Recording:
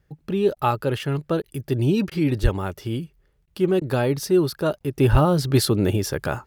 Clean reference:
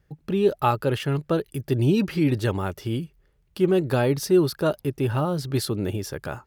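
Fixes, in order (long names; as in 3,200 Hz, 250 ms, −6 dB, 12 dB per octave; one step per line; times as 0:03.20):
0:02.42–0:02.54: high-pass filter 140 Hz 24 dB per octave
0:05.11–0:05.23: high-pass filter 140 Hz 24 dB per octave
repair the gap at 0:00.55/0:01.42/0:02.10/0:03.46/0:03.80/0:04.79, 13 ms
level 0 dB, from 0:04.97 −6.5 dB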